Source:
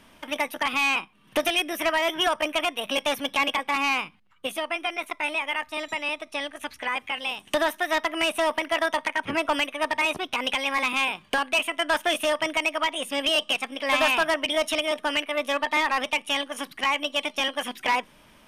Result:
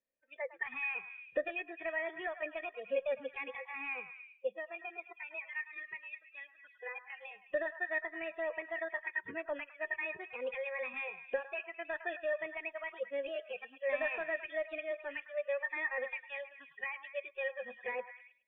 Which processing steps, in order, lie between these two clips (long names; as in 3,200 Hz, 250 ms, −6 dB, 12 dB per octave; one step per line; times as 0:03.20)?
noise reduction from a noise print of the clip's start 28 dB
formant resonators in series e
echo through a band-pass that steps 106 ms, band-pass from 1,100 Hz, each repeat 0.7 octaves, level −8 dB